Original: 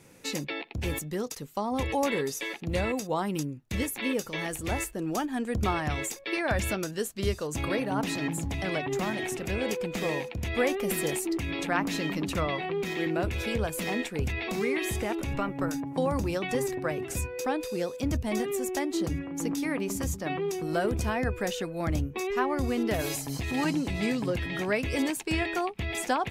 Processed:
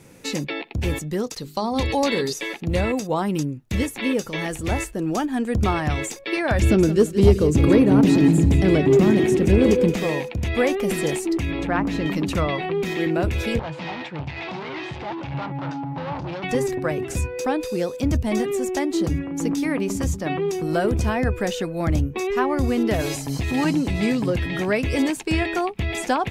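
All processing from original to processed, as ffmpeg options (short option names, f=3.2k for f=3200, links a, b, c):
-filter_complex "[0:a]asettb=1/sr,asplit=3[a][b][c];[a]atrim=end=1.374[d];[b]atrim=start=1.37:end=2.33,asetpts=PTS-STARTPTS,afade=t=in:d=0.004:c=qsin,afade=t=out:st=0.956:d=0.004:c=qsin,equalizer=f=4.3k:t=o:w=0.45:g=13,bandreject=f=50:t=h:w=6,bandreject=f=100:t=h:w=6,bandreject=f=150:t=h:w=6,bandreject=f=200:t=h:w=6,bandreject=f=250:t=h:w=6,bandreject=f=300:t=h:w=6,bandreject=f=350:t=h:w=6,bandreject=f=400:t=h:w=6[e];[c]atrim=start=2.326[f];[d][e]acrossfade=d=0.004:c1=hsin:c2=qsin[g];[g][f]acrossfade=d=0.004:c1=qsin:c2=hsin,asettb=1/sr,asplit=3[h][i][j];[h]atrim=end=6.614[k];[i]atrim=start=6.61:end=9.94,asetpts=PTS-STARTPTS,afade=t=in:d=0.004:c=qsin,afade=t=out:st=3.326:d=0.004:c=qsin,highpass=40,lowshelf=f=530:t=q:w=1.5:g=8.5,aecho=1:1:172|344|516:0.237|0.0711|0.0213,atrim=end_sample=146853[l];[j]atrim=start=9.936[m];[k][l]acrossfade=d=0.004:c1=hsin:c2=qsin[n];[n][m]acrossfade=d=0.004:c1=qsin:c2=hsin,asettb=1/sr,asplit=3[o][p][q];[o]atrim=end=11.524[r];[p]atrim=start=11.52:end=12.06,asetpts=PTS-STARTPTS,afade=t=in:d=0.004:c=qsin,afade=t=out:st=0.536:d=0.004:c=qsin,lowpass=f=1.9k:p=1,aeval=exprs='val(0)+0.00794*(sin(2*PI*60*n/s)+sin(2*PI*2*60*n/s)/2+sin(2*PI*3*60*n/s)/3+sin(2*PI*4*60*n/s)/4+sin(2*PI*5*60*n/s)/5)':c=same[s];[q]atrim=start=12.056[t];[r][s]acrossfade=d=0.004:c1=hsin:c2=qsin[u];[u][t]acrossfade=d=0.004:c1=qsin:c2=hsin,asettb=1/sr,asplit=3[v][w][x];[v]atrim=end=13.594[y];[w]atrim=start=13.59:end=16.44,asetpts=PTS-STARTPTS,afade=t=in:d=0.004:c=qsin,afade=t=out:st=2.846:d=0.004:c=qsin,asoftclip=type=hard:threshold=-34dB,highpass=130,equalizer=f=140:t=q:w=4:g=10,equalizer=f=220:t=q:w=4:g=-10,equalizer=f=430:t=q:w=4:g=-9,equalizer=f=870:t=q:w=4:g=9,lowpass=f=4.4k:w=0.5412,lowpass=f=4.4k:w=1.3066[z];[x]atrim=start=16.436[aa];[y][z]acrossfade=d=0.004:c1=hsin:c2=qsin[ab];[ab][aa]acrossfade=d=0.004:c1=qsin:c2=hsin,acrossover=split=9100[ac][ad];[ad]acompressor=threshold=-50dB:ratio=4:attack=1:release=60[ae];[ac][ae]amix=inputs=2:normalize=0,lowshelf=f=450:g=4,acontrast=84,volume=-2.5dB"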